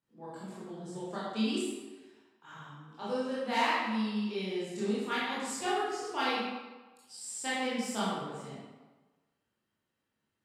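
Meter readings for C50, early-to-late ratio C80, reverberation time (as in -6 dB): -2.5 dB, 0.5 dB, 1.3 s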